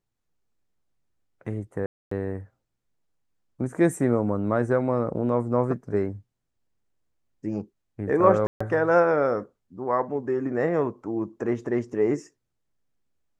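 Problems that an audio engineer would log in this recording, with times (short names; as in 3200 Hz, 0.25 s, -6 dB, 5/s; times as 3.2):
1.86–2.11 gap 0.254 s
8.47–8.61 gap 0.135 s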